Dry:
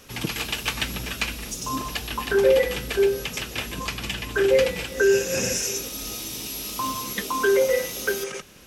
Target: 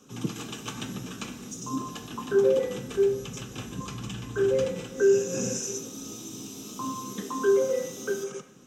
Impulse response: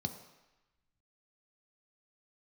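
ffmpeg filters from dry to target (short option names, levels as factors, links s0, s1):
-filter_complex "[0:a]asplit=3[s0][s1][s2];[s0]afade=t=out:st=2.89:d=0.02[s3];[s1]asubboost=boost=3.5:cutoff=130,afade=t=in:st=2.89:d=0.02,afade=t=out:st=4.67:d=0.02[s4];[s2]afade=t=in:st=4.67:d=0.02[s5];[s3][s4][s5]amix=inputs=3:normalize=0[s6];[1:a]atrim=start_sample=2205,asetrate=66150,aresample=44100[s7];[s6][s7]afir=irnorm=-1:irlink=0,volume=0.398"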